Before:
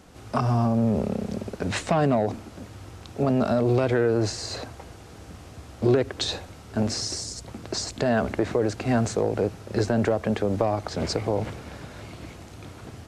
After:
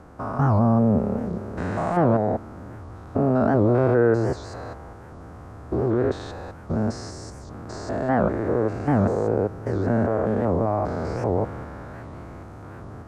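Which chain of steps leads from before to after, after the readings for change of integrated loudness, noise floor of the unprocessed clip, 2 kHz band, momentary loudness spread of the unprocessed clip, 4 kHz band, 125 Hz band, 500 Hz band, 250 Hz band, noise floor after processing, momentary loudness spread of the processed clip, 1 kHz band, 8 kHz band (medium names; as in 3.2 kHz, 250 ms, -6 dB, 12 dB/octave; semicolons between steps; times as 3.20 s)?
+2.5 dB, -45 dBFS, -0.5 dB, 20 LU, -14.5 dB, +3.0 dB, +2.0 dB, +2.5 dB, -41 dBFS, 21 LU, +3.5 dB, -13.0 dB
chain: spectrogram pixelated in time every 200 ms; resonant high shelf 2 kHz -13 dB, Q 1.5; warped record 78 rpm, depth 250 cents; trim +4 dB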